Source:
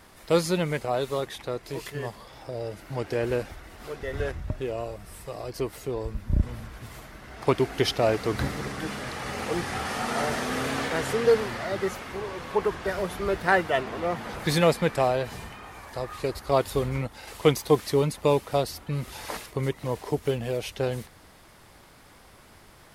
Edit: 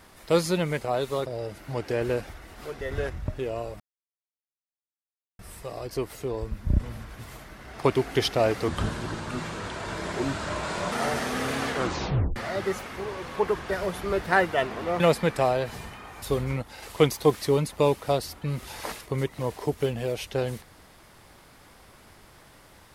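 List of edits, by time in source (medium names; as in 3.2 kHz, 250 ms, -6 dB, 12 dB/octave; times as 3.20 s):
1.26–2.48 s: delete
5.02 s: insert silence 1.59 s
8.31–10.08 s: speed 79%
10.84 s: tape stop 0.68 s
14.16–14.59 s: delete
15.81–16.67 s: delete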